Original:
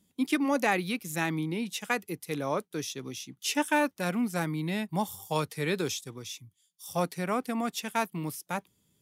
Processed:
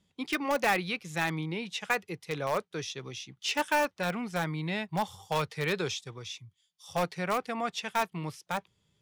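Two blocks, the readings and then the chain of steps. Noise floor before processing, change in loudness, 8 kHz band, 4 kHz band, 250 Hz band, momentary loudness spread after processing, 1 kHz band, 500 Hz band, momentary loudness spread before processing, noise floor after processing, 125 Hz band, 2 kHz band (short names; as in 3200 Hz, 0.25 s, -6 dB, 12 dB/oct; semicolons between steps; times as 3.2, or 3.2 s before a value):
-74 dBFS, -1.0 dB, -4.0 dB, +1.0 dB, -5.5 dB, 10 LU, +1.0 dB, -0.5 dB, 10 LU, -78 dBFS, -1.0 dB, +1.0 dB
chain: LPF 4600 Hz 12 dB/oct; bell 260 Hz -11.5 dB 0.87 oct; in parallel at -9 dB: wrapped overs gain 22.5 dB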